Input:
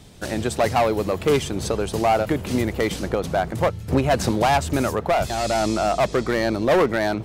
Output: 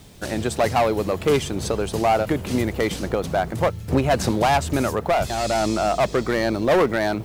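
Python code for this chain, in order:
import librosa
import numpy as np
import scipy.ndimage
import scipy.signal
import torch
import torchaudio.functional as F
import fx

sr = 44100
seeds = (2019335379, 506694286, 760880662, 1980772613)

y = fx.dmg_noise_colour(x, sr, seeds[0], colour='white', level_db=-59.0)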